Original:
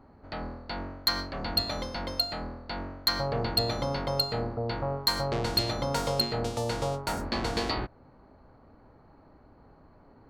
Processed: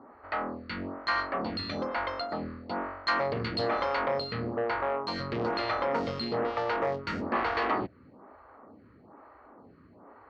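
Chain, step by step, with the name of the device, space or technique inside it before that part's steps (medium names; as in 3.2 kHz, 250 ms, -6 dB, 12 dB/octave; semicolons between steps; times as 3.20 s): vibe pedal into a guitar amplifier (lamp-driven phase shifter 1.1 Hz; valve stage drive 31 dB, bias 0.35; cabinet simulation 110–3800 Hz, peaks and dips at 140 Hz -10 dB, 1.2 kHz +7 dB, 1.9 kHz +4 dB, 3.6 kHz -6 dB); 3.07–4.08 s: treble shelf 4 kHz +7.5 dB; trim +7.5 dB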